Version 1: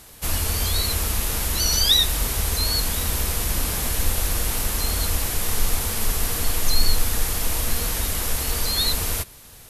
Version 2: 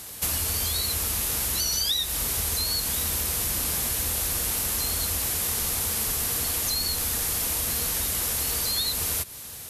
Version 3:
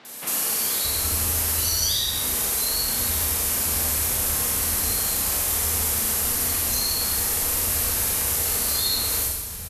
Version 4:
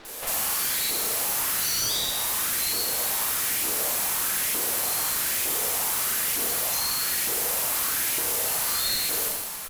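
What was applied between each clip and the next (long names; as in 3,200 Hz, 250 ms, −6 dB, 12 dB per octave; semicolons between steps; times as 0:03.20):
high-pass filter 64 Hz; high-shelf EQ 3,800 Hz +6.5 dB; downward compressor 6 to 1, threshold −26 dBFS, peak gain reduction 15 dB; level +2 dB
three-band delay without the direct sound mids, highs, lows 50/620 ms, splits 170/3,600 Hz; four-comb reverb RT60 1.1 s, combs from 29 ms, DRR −1.5 dB
auto-filter high-pass saw up 1.1 Hz 310–2,400 Hz; half-wave rectification; tube saturation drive 16 dB, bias 0.6; level +8.5 dB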